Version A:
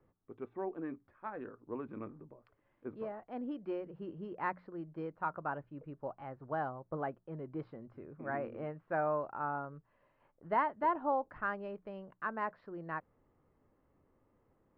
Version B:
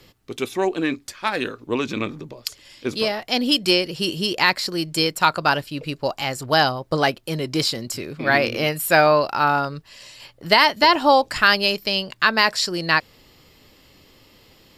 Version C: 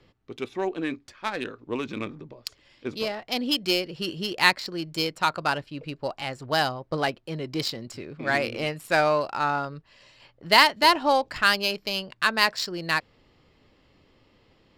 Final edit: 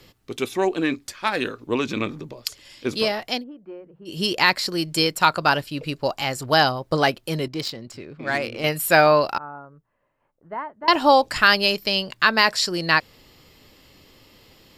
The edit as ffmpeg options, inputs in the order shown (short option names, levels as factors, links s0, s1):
-filter_complex "[0:a]asplit=2[s0][s1];[1:a]asplit=4[s2][s3][s4][s5];[s2]atrim=end=3.44[s6];[s0]atrim=start=3.28:end=4.21[s7];[s3]atrim=start=4.05:end=7.482[s8];[2:a]atrim=start=7.478:end=8.642[s9];[s4]atrim=start=8.638:end=9.382[s10];[s1]atrim=start=9.378:end=10.882[s11];[s5]atrim=start=10.878[s12];[s6][s7]acrossfade=d=0.16:c1=tri:c2=tri[s13];[s13][s8]acrossfade=d=0.16:c1=tri:c2=tri[s14];[s14][s9]acrossfade=d=0.004:c1=hsin:c2=hsin[s15];[s15][s10]acrossfade=d=0.004:c1=hsin:c2=hsin[s16];[s16][s11]acrossfade=d=0.004:c1=hsin:c2=hsin[s17];[s17][s12]acrossfade=d=0.004:c1=hsin:c2=hsin"